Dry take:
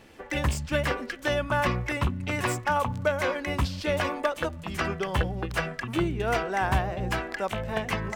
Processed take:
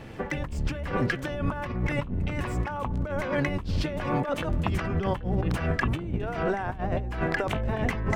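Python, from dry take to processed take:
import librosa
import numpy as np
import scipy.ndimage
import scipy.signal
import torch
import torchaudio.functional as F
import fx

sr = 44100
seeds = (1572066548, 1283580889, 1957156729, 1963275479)

y = fx.octave_divider(x, sr, octaves=1, level_db=3.0)
y = fx.over_compress(y, sr, threshold_db=-32.0, ratio=-1.0)
y = fx.high_shelf(y, sr, hz=3500.0, db=-10.5)
y = y * librosa.db_to_amplitude(3.5)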